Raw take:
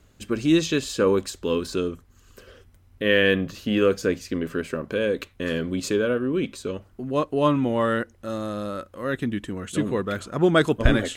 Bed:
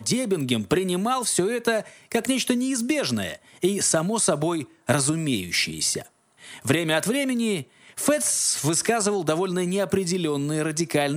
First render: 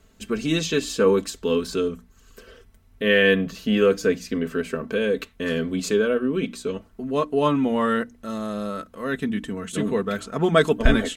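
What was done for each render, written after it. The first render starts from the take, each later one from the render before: notches 60/120/180/240/300 Hz; comb 4.5 ms, depth 60%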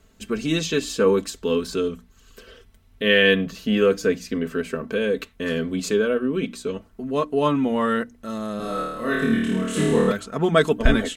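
1.84–3.46 bell 3400 Hz +5 dB 0.96 oct; 8.57–10.12 flutter echo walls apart 4.5 m, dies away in 1.1 s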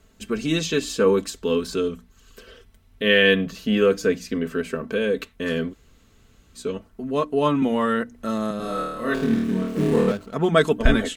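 5.71–6.57 room tone, crossfade 0.06 s; 7.62–8.51 three-band squash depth 70%; 9.14–10.34 median filter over 25 samples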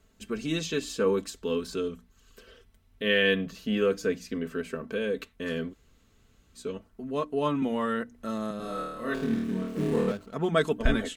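gain -7 dB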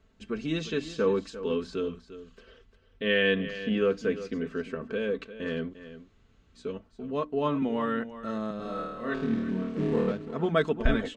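air absorption 130 m; echo 0.349 s -13.5 dB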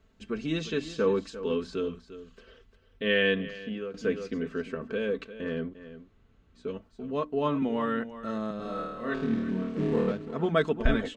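3.23–3.94 fade out, to -15.5 dB; 5.41–6.68 high shelf 3100 Hz -10 dB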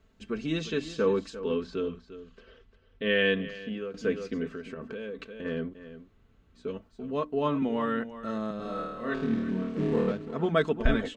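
1.39–3.19 air absorption 83 m; 4.47–5.45 compressor, threshold -34 dBFS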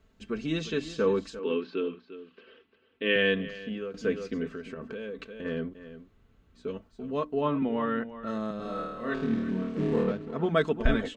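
1.39–3.16 speaker cabinet 240–4400 Hz, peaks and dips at 320 Hz +8 dB, 630 Hz -4 dB, 2600 Hz +6 dB; 7.41–8.27 LPF 3300 Hz; 10.03–10.51 high shelf 5900 Hz -7.5 dB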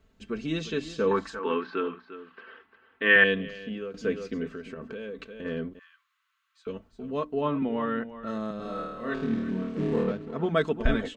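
1.11–3.24 band shelf 1200 Hz +12.5 dB; 5.79–6.67 steep high-pass 1000 Hz 96 dB/oct

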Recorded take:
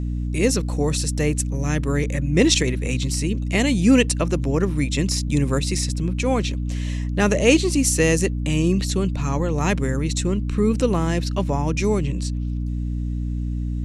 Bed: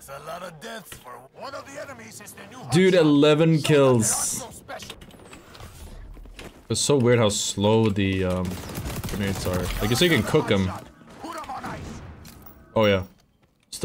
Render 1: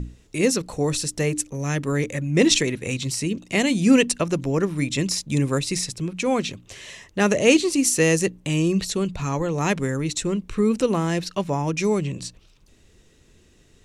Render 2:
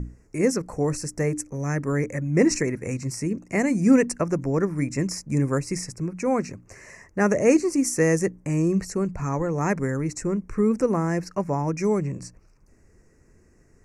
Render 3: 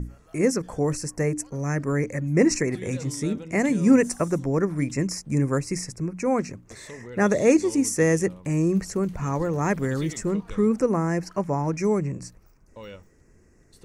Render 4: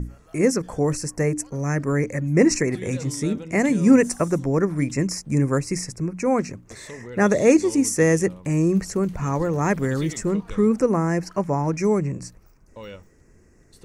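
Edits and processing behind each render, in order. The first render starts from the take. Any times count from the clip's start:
notches 60/120/180/240/300 Hz
Chebyshev band-stop 2000–5600 Hz, order 2; high shelf 3400 Hz -7.5 dB
add bed -22 dB
gain +2.5 dB

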